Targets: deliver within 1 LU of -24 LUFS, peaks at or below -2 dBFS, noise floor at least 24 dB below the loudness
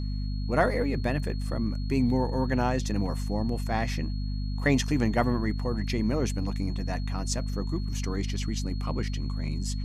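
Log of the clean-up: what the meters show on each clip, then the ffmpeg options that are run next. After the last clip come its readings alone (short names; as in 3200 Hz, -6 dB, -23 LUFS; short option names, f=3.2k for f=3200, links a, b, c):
hum 50 Hz; harmonics up to 250 Hz; hum level -28 dBFS; steady tone 4300 Hz; tone level -48 dBFS; loudness -29.0 LUFS; peak -9.5 dBFS; loudness target -24.0 LUFS
-> -af "bandreject=f=50:t=h:w=6,bandreject=f=100:t=h:w=6,bandreject=f=150:t=h:w=6,bandreject=f=200:t=h:w=6,bandreject=f=250:t=h:w=6"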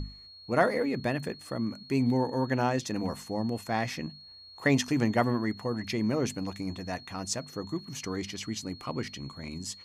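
hum none; steady tone 4300 Hz; tone level -48 dBFS
-> -af "bandreject=f=4.3k:w=30"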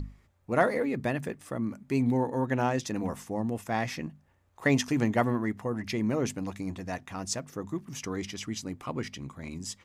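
steady tone none; loudness -31.0 LUFS; peak -9.5 dBFS; loudness target -24.0 LUFS
-> -af "volume=7dB"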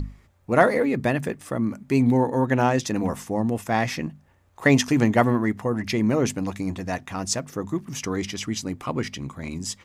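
loudness -24.0 LUFS; peak -2.5 dBFS; noise floor -60 dBFS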